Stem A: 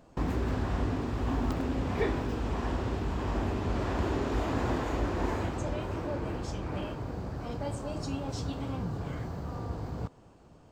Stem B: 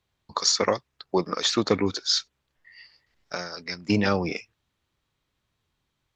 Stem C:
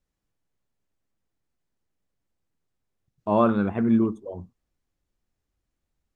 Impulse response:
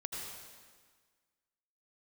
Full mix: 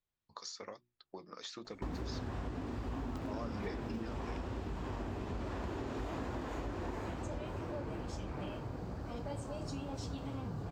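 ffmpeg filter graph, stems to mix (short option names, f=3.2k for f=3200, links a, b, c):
-filter_complex "[0:a]adelay=1650,volume=-0.5dB[a];[1:a]acompressor=threshold=-24dB:ratio=6,bandreject=f=60:t=h:w=6,bandreject=f=120:t=h:w=6,bandreject=f=180:t=h:w=6,bandreject=f=240:t=h:w=6,bandreject=f=300:t=h:w=6,bandreject=f=360:t=h:w=6,volume=-14dB[b];[2:a]volume=-13.5dB[c];[a][b][c]amix=inputs=3:normalize=0,flanger=delay=3.3:depth=5.3:regen=-67:speed=1.1:shape=sinusoidal,acompressor=threshold=-36dB:ratio=6"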